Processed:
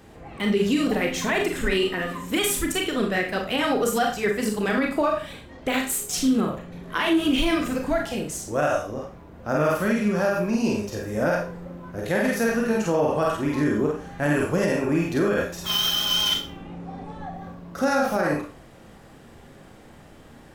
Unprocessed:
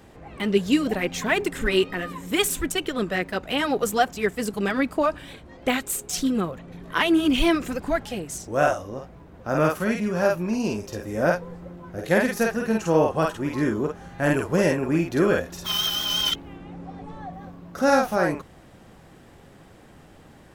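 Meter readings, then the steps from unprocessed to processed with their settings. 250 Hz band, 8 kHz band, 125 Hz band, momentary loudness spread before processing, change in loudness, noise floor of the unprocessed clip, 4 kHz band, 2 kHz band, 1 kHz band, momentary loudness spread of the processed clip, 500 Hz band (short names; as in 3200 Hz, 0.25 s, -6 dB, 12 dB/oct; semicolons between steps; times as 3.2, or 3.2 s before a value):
+0.5 dB, +1.5 dB, 0.0 dB, 17 LU, 0.0 dB, -50 dBFS, +1.5 dB, 0.0 dB, -0.5 dB, 14 LU, -0.5 dB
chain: Schroeder reverb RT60 0.35 s, combs from 27 ms, DRR 2 dB; limiter -13 dBFS, peak gain reduction 8 dB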